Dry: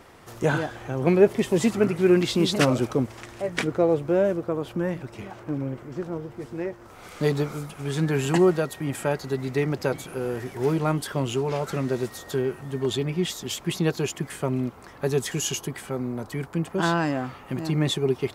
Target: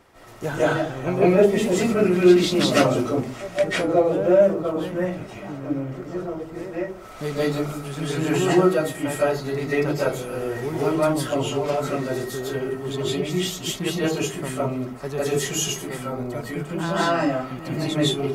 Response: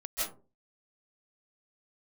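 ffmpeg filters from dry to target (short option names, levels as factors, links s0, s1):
-filter_complex "[1:a]atrim=start_sample=2205[s0];[0:a][s0]afir=irnorm=-1:irlink=0,volume=0.891"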